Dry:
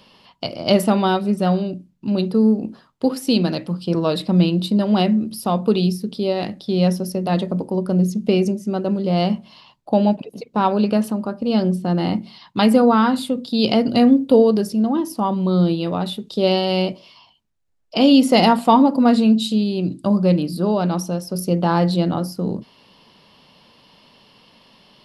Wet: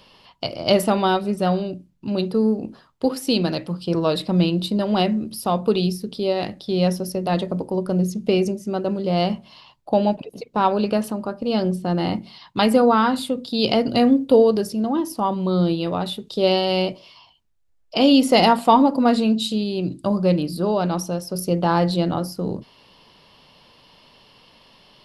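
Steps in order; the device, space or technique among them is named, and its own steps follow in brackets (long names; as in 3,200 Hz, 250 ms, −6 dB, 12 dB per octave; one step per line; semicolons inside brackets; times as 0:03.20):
low shelf boost with a cut just above (low-shelf EQ 60 Hz +7 dB; parametric band 210 Hz −5.5 dB 0.79 octaves)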